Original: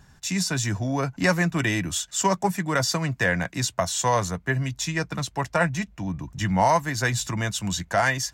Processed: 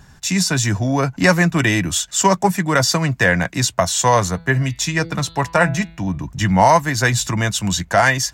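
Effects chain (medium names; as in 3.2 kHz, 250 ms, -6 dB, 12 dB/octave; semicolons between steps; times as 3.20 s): 4.20–6.27 s: de-hum 165.4 Hz, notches 28; trim +7.5 dB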